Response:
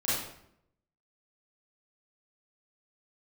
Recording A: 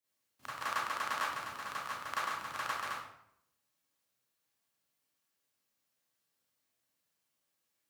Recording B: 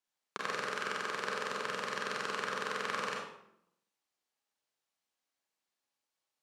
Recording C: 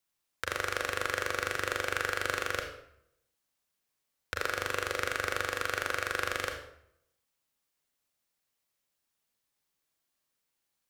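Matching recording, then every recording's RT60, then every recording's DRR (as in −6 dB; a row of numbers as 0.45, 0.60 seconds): A; 0.75, 0.75, 0.75 seconds; −10.5, −2.0, 3.5 decibels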